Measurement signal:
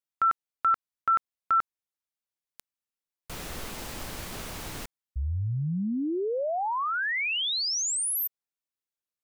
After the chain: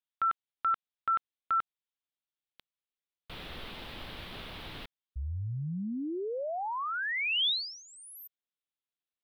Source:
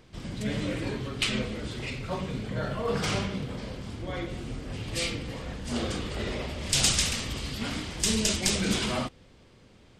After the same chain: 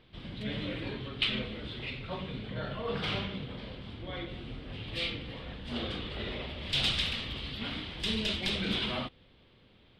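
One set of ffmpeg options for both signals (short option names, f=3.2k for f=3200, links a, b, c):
-af "highshelf=f=4.9k:t=q:w=3:g=-12,volume=-6dB"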